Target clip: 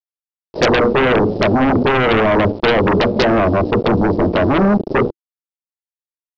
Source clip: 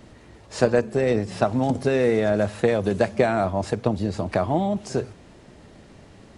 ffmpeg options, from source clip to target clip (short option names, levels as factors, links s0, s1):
-filter_complex "[0:a]afftdn=nr=13:nf=-39,highpass=f=110:p=1,bandreject=f=60:t=h:w=6,bandreject=f=120:t=h:w=6,bandreject=f=180:t=h:w=6,bandreject=f=240:t=h:w=6,bandreject=f=300:t=h:w=6,bandreject=f=360:t=h:w=6,bandreject=f=420:t=h:w=6,bandreject=f=480:t=h:w=6,aresample=11025,acrusher=bits=5:mix=0:aa=0.000001,aresample=44100,firequalizer=gain_entry='entry(140,0);entry(330,8);entry(1600,-28);entry(3500,-22)':delay=0.05:min_phase=1,asplit=2[s0][s1];[s1]aeval=exprs='0.473*sin(PI/2*6.31*val(0)/0.473)':c=same,volume=0.668[s2];[s0][s2]amix=inputs=2:normalize=0,adynamicequalizer=threshold=0.0447:dfrequency=1900:dqfactor=0.75:tfrequency=1900:tqfactor=0.75:attack=5:release=100:ratio=0.375:range=2:mode=cutabove:tftype=bell,volume=0.891"